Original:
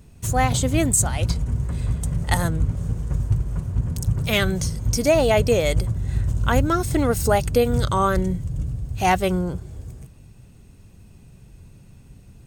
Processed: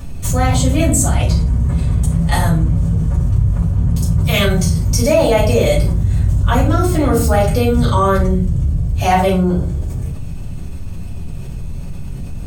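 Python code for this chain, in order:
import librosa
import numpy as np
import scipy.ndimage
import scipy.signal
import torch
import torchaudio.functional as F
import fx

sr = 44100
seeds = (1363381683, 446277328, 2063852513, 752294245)

y = fx.high_shelf(x, sr, hz=8100.0, db=5.0, at=(4.24, 6.38))
y = fx.room_shoebox(y, sr, seeds[0], volume_m3=260.0, walls='furnished', distance_m=6.1)
y = fx.env_flatten(y, sr, amount_pct=50)
y = F.gain(torch.from_numpy(y), -9.0).numpy()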